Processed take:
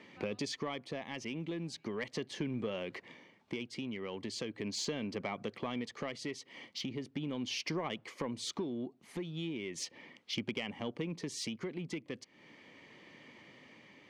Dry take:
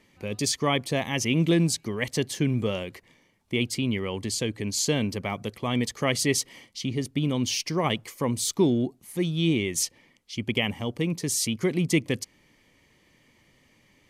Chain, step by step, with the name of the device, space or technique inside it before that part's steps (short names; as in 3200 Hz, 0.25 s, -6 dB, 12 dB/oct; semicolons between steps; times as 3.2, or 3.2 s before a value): AM radio (BPF 190–3600 Hz; compressor 8:1, threshold -40 dBFS, peak gain reduction 22 dB; soft clip -32 dBFS, distortion -20 dB; tremolo 0.38 Hz, depth 35%); gain +7 dB